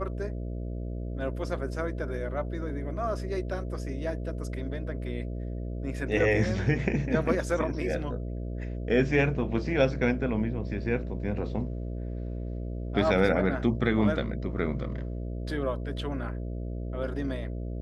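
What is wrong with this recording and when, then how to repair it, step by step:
mains buzz 60 Hz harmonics 11 −34 dBFS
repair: hum removal 60 Hz, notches 11

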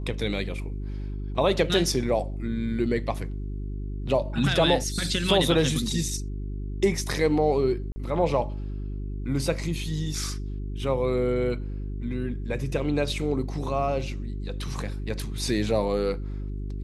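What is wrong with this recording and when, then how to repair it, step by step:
mains hum 50 Hz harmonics 8 −32 dBFS
0:07.92–0:07.96: drop-out 40 ms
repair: hum removal 50 Hz, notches 8
repair the gap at 0:07.92, 40 ms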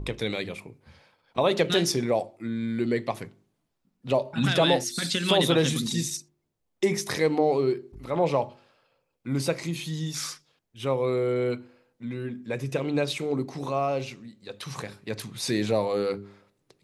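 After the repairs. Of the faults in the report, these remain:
none of them is left

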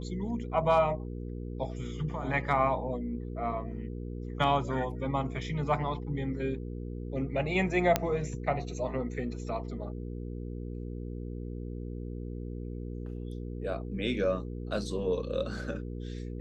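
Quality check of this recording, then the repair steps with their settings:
mains hum 60 Hz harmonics 8 −38 dBFS
0:07.96: click −9 dBFS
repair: click removal
hum removal 60 Hz, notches 8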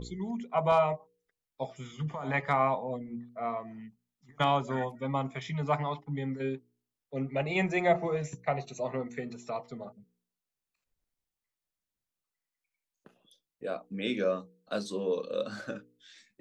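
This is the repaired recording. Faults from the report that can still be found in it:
none of them is left

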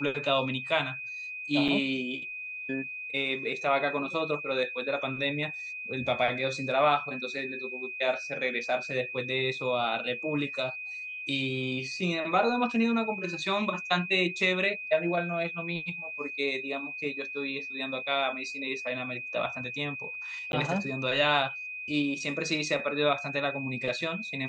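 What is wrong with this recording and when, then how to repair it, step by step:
whistle 2,500 Hz −36 dBFS
0:01.68–0:01.69: drop-out 6.1 ms
0:20.52–0:20.53: drop-out 11 ms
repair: notch filter 2,500 Hz, Q 30
repair the gap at 0:01.68, 6.1 ms
repair the gap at 0:20.52, 11 ms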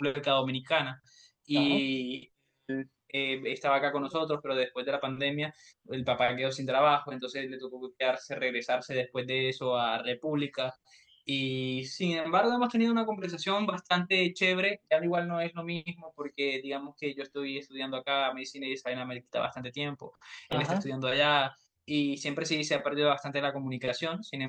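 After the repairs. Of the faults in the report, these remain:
none of them is left

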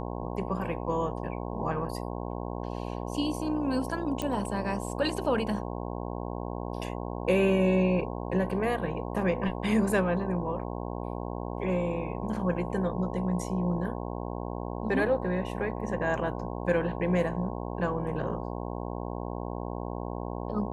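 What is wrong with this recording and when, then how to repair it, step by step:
mains buzz 60 Hz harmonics 18 −35 dBFS
0:04.22: click −18 dBFS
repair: click removal
hum removal 60 Hz, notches 18

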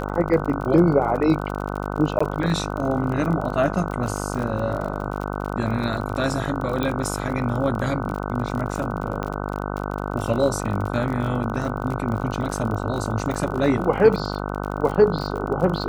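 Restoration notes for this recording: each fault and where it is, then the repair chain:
mains buzz 50 Hz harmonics 30 −28 dBFS
surface crackle 39 per second −28 dBFS
0:02.19–0:02.21: drop-out 15 ms
0:06.83: click −12 dBFS
0:09.23: click −15 dBFS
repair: click removal
hum removal 50 Hz, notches 30
repair the gap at 0:02.19, 15 ms

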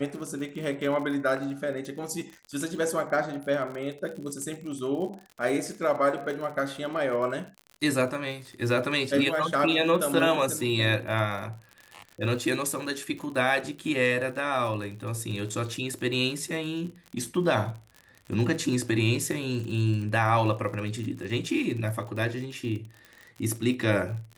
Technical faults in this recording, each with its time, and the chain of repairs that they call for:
surface crackle 58 per second −35 dBFS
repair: click removal

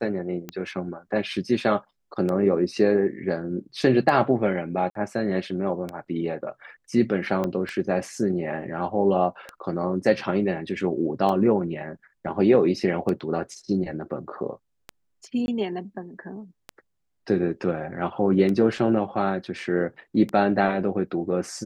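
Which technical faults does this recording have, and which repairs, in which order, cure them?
scratch tick 33 1/3 rpm −17 dBFS
0:04.90–0:04.95: drop-out 53 ms
0:07.44: drop-out 2.2 ms
0:15.46–0:15.48: drop-out 21 ms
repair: click removal
repair the gap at 0:04.90, 53 ms
repair the gap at 0:07.44, 2.2 ms
repair the gap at 0:15.46, 21 ms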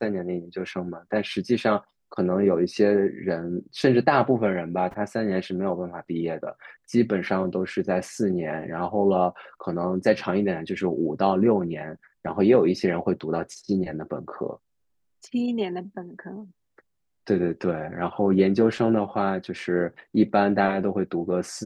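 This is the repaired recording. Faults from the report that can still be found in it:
none of them is left

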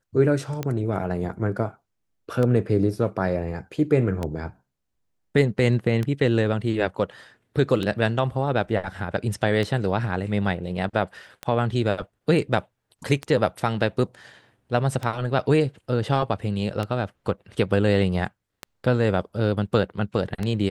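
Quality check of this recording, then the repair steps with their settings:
scratch tick 33 1/3 rpm −14 dBFS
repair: click removal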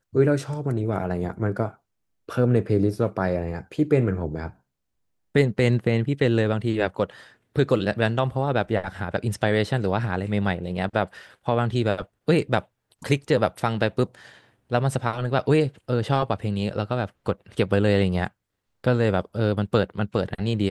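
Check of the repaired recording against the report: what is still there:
none of them is left

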